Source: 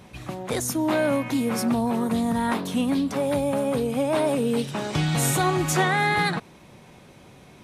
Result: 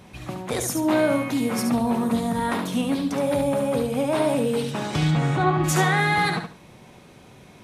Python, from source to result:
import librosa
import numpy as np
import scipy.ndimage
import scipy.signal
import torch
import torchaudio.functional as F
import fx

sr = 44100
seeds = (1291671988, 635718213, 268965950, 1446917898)

p1 = fx.lowpass(x, sr, hz=2300.0, slope=12, at=(5.1, 5.63), fade=0.02)
y = p1 + fx.echo_feedback(p1, sr, ms=71, feedback_pct=23, wet_db=-6.0, dry=0)